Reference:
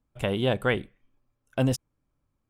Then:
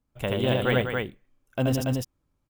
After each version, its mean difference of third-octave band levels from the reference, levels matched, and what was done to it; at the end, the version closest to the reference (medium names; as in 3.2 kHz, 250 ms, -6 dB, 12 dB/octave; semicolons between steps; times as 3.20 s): 5.5 dB: loudspeakers at several distances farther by 27 m -2 dB, 68 m -7 dB, 97 m -3 dB; careless resampling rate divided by 2×, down none, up hold; trim -1.5 dB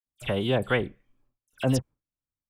8.5 dB: gate with hold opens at -60 dBFS; phase dispersion lows, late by 60 ms, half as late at 2.9 kHz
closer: first